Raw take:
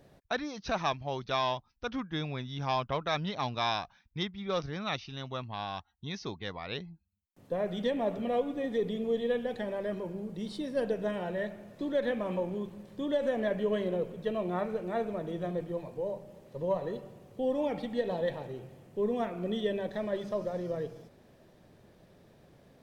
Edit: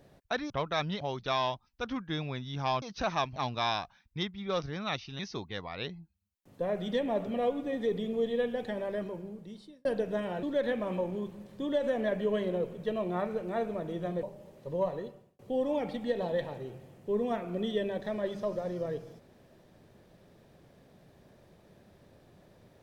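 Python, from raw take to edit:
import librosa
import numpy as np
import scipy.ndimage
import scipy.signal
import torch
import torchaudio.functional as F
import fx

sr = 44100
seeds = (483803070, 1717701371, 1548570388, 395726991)

y = fx.edit(x, sr, fx.swap(start_s=0.5, length_s=0.54, other_s=2.85, other_length_s=0.51),
    fx.cut(start_s=5.19, length_s=0.91),
    fx.fade_out_span(start_s=9.86, length_s=0.9),
    fx.cut(start_s=11.34, length_s=0.48),
    fx.cut(start_s=15.62, length_s=0.5),
    fx.fade_out_span(start_s=16.77, length_s=0.51), tone=tone)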